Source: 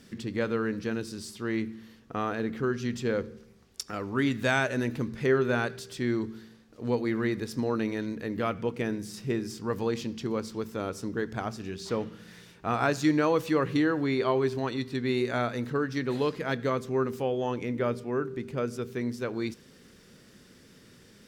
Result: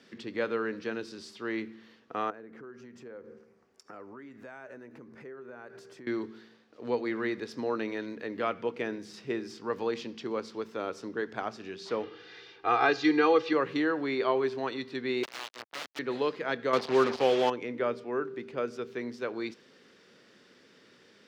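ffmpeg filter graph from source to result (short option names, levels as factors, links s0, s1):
-filter_complex "[0:a]asettb=1/sr,asplit=3[s0][s1][s2];[s0]atrim=end=2.304[s3];[s1]atrim=start=2.3:end=6.07,asetpts=PTS-STARTPTS,afade=t=in:d=0.004:c=qsin,afade=t=out:st=3.766:d=0.004:c=qsin,acompressor=threshold=0.0126:ratio=16:attack=3.2:release=140:knee=1:detection=peak,equalizer=f=3600:w=1.2:g=-15[s4];[s2]atrim=start=6.066[s5];[s3][s4]acrossfade=d=0.004:c1=hsin:c2=qsin[s6];[s6][s5]acrossfade=d=0.004:c1=qsin:c2=hsin,asettb=1/sr,asplit=3[s7][s8][s9];[s7]atrim=end=12.034[s10];[s8]atrim=start=12.03:end=13.53,asetpts=PTS-STARTPTS,afade=t=in:d=0.004:c=qsin,afade=t=out:st=1.496:d=0.004:c=qsin,lowpass=f=4800:w=0.5412,lowpass=f=4800:w=1.3066,aemphasis=mode=production:type=cd,aecho=1:1:2.5:0.97,atrim=end_sample=66150[s11];[s9]atrim=start=13.526[s12];[s10][s11]acrossfade=d=0.004:c1=hsin:c2=qsin[s13];[s13][s12]acrossfade=d=0.004:c1=qsin:c2=hsin,asettb=1/sr,asplit=3[s14][s15][s16];[s14]atrim=end=15.234[s17];[s15]atrim=start=15.23:end=15.99,asetpts=PTS-STARTPTS,afade=t=in:d=0.004:c=qsin,afade=t=out:st=0.756:d=0.004:c=qsin,acrusher=bits=3:mix=0:aa=0.5,aeval=exprs='(mod(22.4*val(0)+1,2)-1)/22.4':c=same[s18];[s16]atrim=start=15.986[s19];[s17][s18]acrossfade=d=0.004:c1=hsin:c2=qsin[s20];[s20][s19]acrossfade=d=0.004:c1=qsin:c2=hsin,asettb=1/sr,asplit=3[s21][s22][s23];[s21]atrim=end=16.734[s24];[s22]atrim=start=16.73:end=17.5,asetpts=PTS-STARTPTS,afade=t=in:d=0.004:c=qsin,afade=t=out:st=0.766:d=0.004:c=qsin,acontrast=38,lowpass=f=4700:t=q:w=3.8,acrusher=bits=4:mix=0:aa=0.5[s25];[s23]atrim=start=17.496[s26];[s24][s25]acrossfade=d=0.004:c1=hsin:c2=qsin[s27];[s27][s26]acrossfade=d=0.004:c1=qsin:c2=hsin,highpass=100,acrossover=split=290 5400:gain=0.2 1 0.112[s28][s29][s30];[s28][s29][s30]amix=inputs=3:normalize=0"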